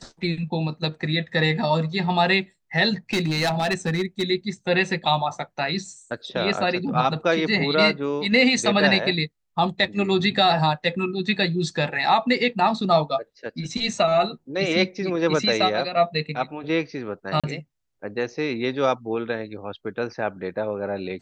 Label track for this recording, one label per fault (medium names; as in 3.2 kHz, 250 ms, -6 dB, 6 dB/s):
3.130000	4.230000	clipped -18 dBFS
17.400000	17.440000	dropout 36 ms